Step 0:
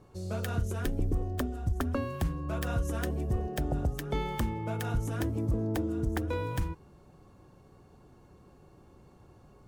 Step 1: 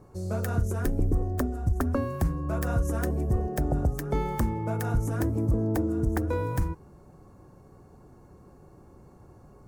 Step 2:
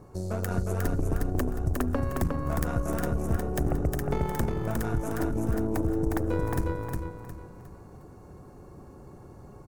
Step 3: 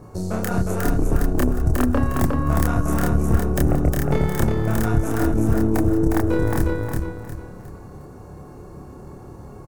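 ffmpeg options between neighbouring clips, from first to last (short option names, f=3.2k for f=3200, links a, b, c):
-af "equalizer=f=3.2k:w=1.4:g=-13,volume=4.5dB"
-filter_complex "[0:a]acompressor=threshold=-36dB:ratio=2,aeval=exprs='0.0891*(cos(1*acos(clip(val(0)/0.0891,-1,1)))-cos(1*PI/2))+0.0126*(cos(3*acos(clip(val(0)/0.0891,-1,1)))-cos(3*PI/2))+0.00891*(cos(4*acos(clip(val(0)/0.0891,-1,1)))-cos(4*PI/2))':c=same,asplit=2[a][b];[b]aecho=0:1:359|718|1077|1436|1795:0.668|0.234|0.0819|0.0287|0.01[c];[a][c]amix=inputs=2:normalize=0,volume=7.5dB"
-filter_complex "[0:a]asplit=2[a][b];[b]adelay=28,volume=-2dB[c];[a][c]amix=inputs=2:normalize=0,volume=6dB"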